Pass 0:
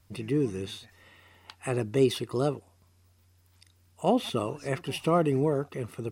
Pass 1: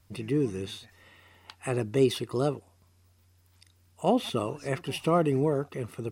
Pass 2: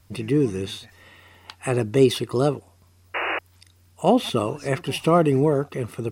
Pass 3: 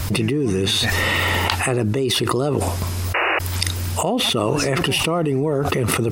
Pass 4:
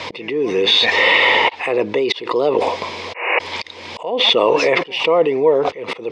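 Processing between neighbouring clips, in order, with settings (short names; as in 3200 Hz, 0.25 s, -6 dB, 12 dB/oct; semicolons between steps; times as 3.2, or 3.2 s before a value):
nothing audible
painted sound noise, 3.14–3.39, 310–2900 Hz -32 dBFS; gain +6.5 dB
fast leveller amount 100%; gain -7.5 dB
speaker cabinet 380–4800 Hz, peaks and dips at 490 Hz +10 dB, 970 Hz +8 dB, 1400 Hz -9 dB, 2200 Hz +9 dB, 3400 Hz +5 dB; auto swell 0.331 s; gain +3.5 dB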